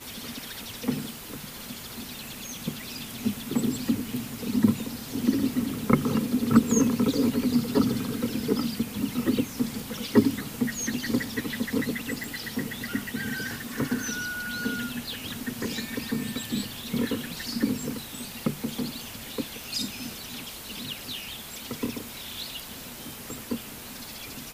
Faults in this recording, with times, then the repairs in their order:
12.24 s: pop
19.64 s: pop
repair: de-click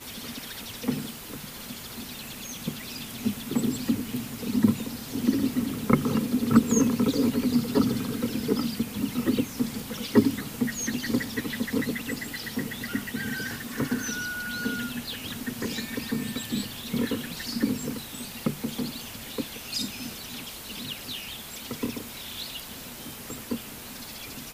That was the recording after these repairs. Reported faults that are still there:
nothing left

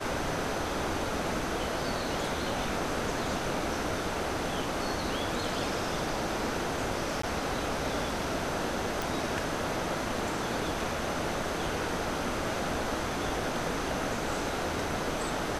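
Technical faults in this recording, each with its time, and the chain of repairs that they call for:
7.22–7.23 s: dropout 14 ms
9.02 s: pop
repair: de-click; interpolate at 7.22 s, 14 ms

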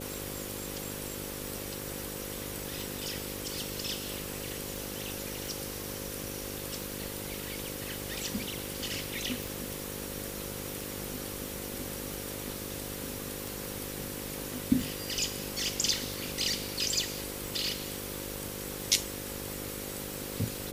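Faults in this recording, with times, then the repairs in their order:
buzz 50 Hz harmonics 11 -42 dBFS
tick 45 rpm
4.76 s: pop
9.43 s: pop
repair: de-click; de-hum 50 Hz, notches 11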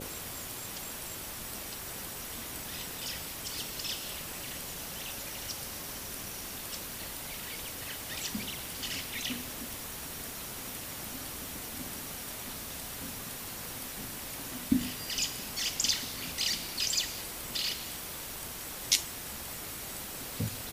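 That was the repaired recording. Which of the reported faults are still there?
nothing left

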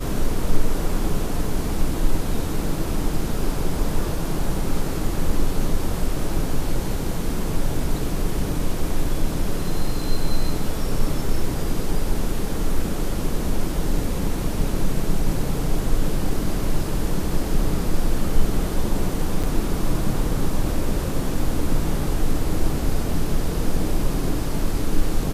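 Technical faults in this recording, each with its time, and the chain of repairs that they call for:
19.43–19.44 s: dropout 6.3 ms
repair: interpolate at 19.43 s, 6.3 ms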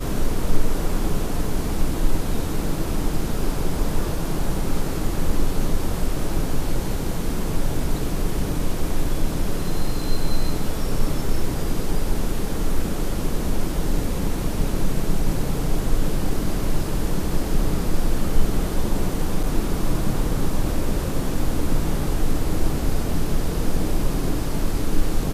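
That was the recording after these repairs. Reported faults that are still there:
nothing left

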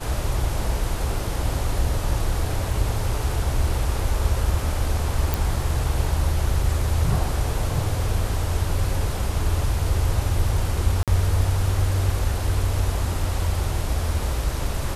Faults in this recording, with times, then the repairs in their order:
5.34 s: pop
11.03–11.08 s: dropout 47 ms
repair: de-click; interpolate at 11.03 s, 47 ms

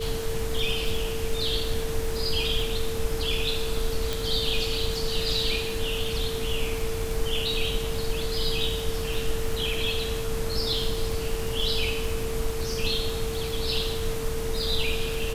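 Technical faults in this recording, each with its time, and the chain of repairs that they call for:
crackle 43 per s -30 dBFS
whine 450 Hz -31 dBFS
4.13 s: pop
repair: de-click; band-stop 450 Hz, Q 30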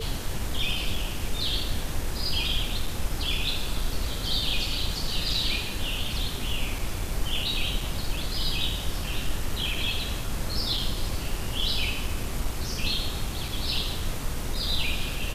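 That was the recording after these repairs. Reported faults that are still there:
4.13 s: pop

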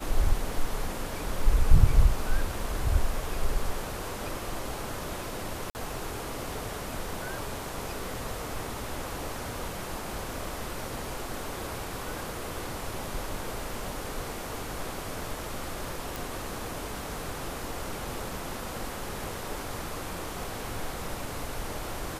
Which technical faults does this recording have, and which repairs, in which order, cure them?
5.70–5.75 s: dropout 49 ms
16.16 s: pop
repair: de-click; interpolate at 5.70 s, 49 ms

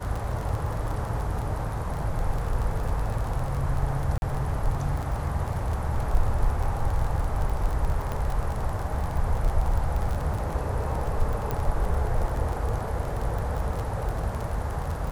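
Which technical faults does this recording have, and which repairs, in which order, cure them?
crackle 25 per s -28 dBFS
4.18–4.22 s: dropout 41 ms
8.12 s: pop -18 dBFS
11.51 s: pop -15 dBFS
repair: de-click; interpolate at 4.18 s, 41 ms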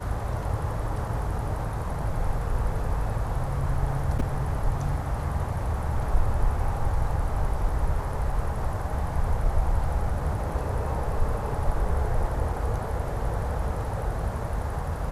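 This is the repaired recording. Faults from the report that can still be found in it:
nothing left

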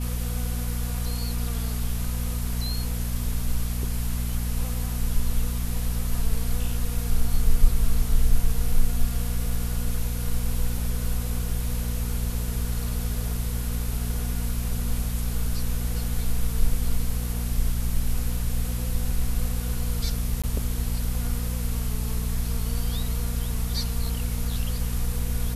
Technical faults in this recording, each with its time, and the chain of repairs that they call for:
hum 60 Hz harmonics 4 -28 dBFS
20.42–20.44 s: dropout 16 ms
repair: de-hum 60 Hz, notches 4; interpolate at 20.42 s, 16 ms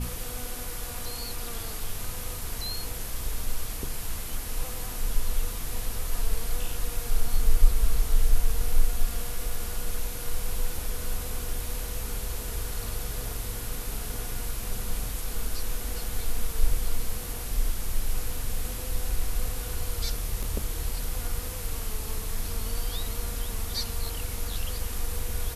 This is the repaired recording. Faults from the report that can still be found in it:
nothing left

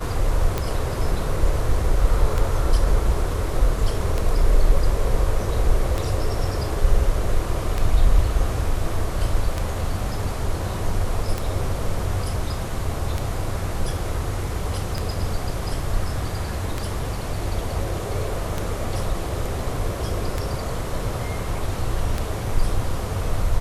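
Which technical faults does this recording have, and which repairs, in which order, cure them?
tick 33 1/3 rpm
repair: de-click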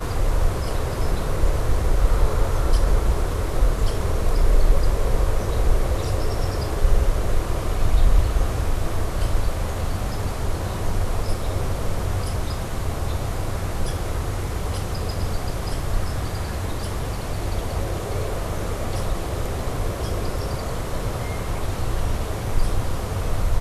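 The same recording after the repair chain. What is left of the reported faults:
nothing left

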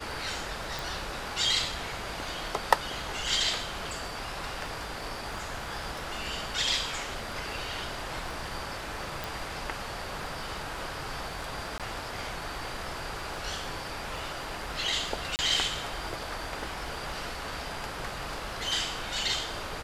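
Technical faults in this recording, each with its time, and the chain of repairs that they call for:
crackle 24 per s -41 dBFS
0.79 s: pop
9.24 s: pop
11.78–11.80 s: dropout 17 ms
15.36–15.39 s: dropout 29 ms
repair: de-click; interpolate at 11.78 s, 17 ms; interpolate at 15.36 s, 29 ms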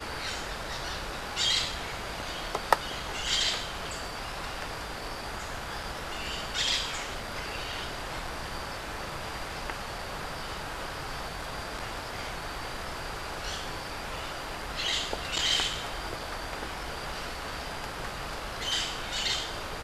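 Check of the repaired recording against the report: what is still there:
9.24 s: pop

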